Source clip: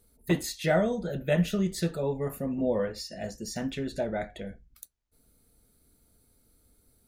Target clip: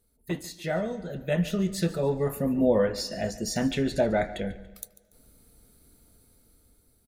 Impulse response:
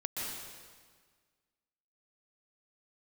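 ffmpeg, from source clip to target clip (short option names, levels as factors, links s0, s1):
-filter_complex "[0:a]aecho=1:1:143|286|429:0.126|0.0466|0.0172,asplit=2[s0][s1];[1:a]atrim=start_sample=2205,lowpass=7200[s2];[s1][s2]afir=irnorm=-1:irlink=0,volume=0.0531[s3];[s0][s3]amix=inputs=2:normalize=0,dynaudnorm=f=490:g=7:m=4.47,volume=0.501"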